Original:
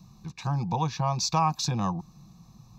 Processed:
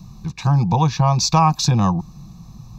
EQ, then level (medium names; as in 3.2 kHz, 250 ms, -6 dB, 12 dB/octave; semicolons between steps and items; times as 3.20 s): bass shelf 110 Hz +10 dB; +8.5 dB